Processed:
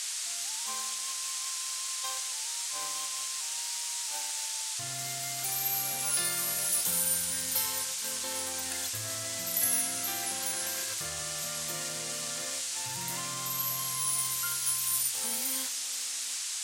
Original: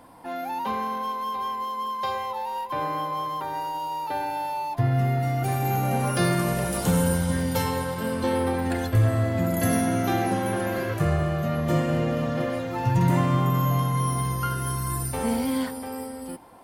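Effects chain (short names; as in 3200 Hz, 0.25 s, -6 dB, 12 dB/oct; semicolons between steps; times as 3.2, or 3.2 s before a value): gate -27 dBFS, range -11 dB; band noise 560–8400 Hz -38 dBFS; in parallel at -1 dB: limiter -20 dBFS, peak gain reduction 9.5 dB; on the sum: pre-emphasis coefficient 0.97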